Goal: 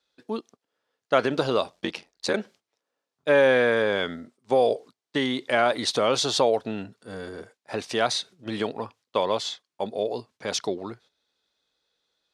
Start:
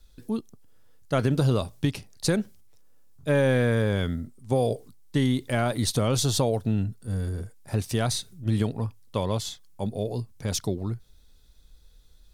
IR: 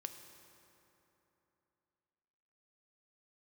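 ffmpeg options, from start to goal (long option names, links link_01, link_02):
-filter_complex "[0:a]agate=range=-12dB:threshold=-44dB:ratio=16:detection=peak,asplit=3[link_01][link_02][link_03];[link_01]afade=type=out:start_time=1.7:duration=0.02[link_04];[link_02]aeval=exprs='val(0)*sin(2*PI*44*n/s)':channel_layout=same,afade=type=in:start_time=1.7:duration=0.02,afade=type=out:start_time=2.33:duration=0.02[link_05];[link_03]afade=type=in:start_time=2.33:duration=0.02[link_06];[link_04][link_05][link_06]amix=inputs=3:normalize=0,highpass=450,lowpass=4400,volume=7dB"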